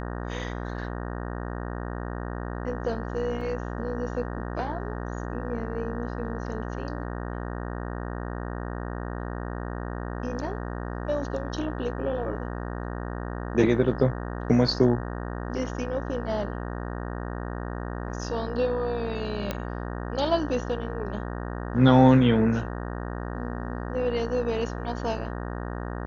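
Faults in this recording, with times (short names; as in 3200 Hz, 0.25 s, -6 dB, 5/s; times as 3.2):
buzz 60 Hz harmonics 31 -33 dBFS
3.41 gap 2.8 ms
19.51 pop -14 dBFS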